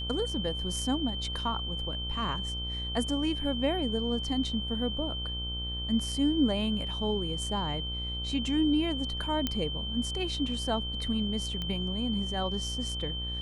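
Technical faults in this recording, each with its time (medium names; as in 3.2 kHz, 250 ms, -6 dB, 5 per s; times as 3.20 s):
buzz 60 Hz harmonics 25 -37 dBFS
whine 3.1 kHz -35 dBFS
9.47 s: pop -14 dBFS
11.62 s: pop -22 dBFS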